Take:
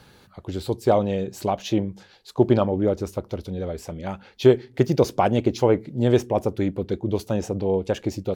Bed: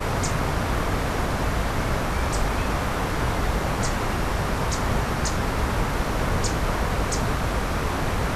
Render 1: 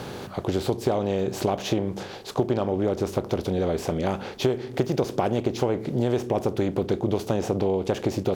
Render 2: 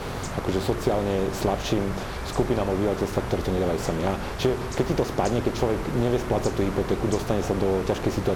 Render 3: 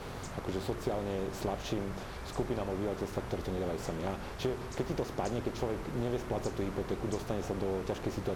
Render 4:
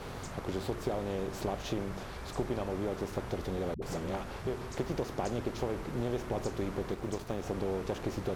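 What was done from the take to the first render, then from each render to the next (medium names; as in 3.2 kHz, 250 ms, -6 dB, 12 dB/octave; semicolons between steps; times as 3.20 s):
spectral levelling over time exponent 0.6; compression 6:1, threshold -20 dBFS, peak gain reduction 12 dB
add bed -8.5 dB
trim -10.5 dB
3.74–4.47 s: phase dispersion highs, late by 80 ms, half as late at 310 Hz; 6.91–7.46 s: companding laws mixed up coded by A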